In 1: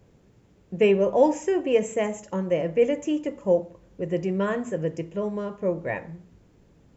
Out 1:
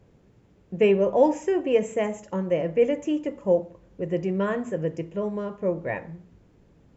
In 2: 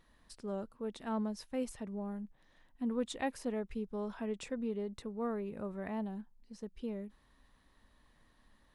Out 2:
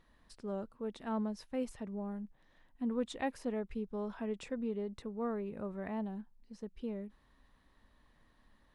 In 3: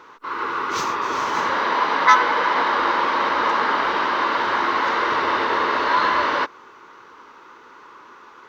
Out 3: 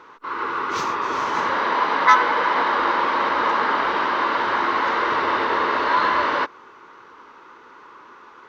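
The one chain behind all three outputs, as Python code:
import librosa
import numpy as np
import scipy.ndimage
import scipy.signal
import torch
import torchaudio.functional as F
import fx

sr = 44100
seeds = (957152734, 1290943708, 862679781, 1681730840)

y = fx.high_shelf(x, sr, hz=5300.0, db=-7.5)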